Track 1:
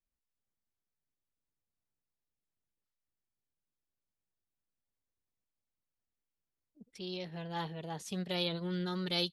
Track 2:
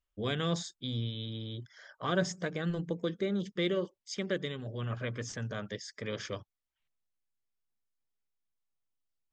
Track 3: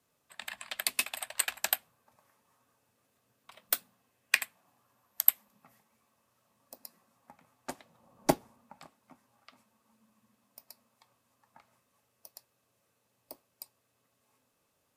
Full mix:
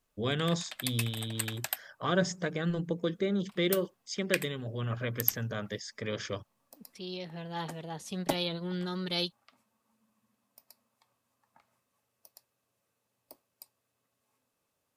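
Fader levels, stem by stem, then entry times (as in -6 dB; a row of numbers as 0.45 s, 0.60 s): +1.0 dB, +2.0 dB, -5.0 dB; 0.00 s, 0.00 s, 0.00 s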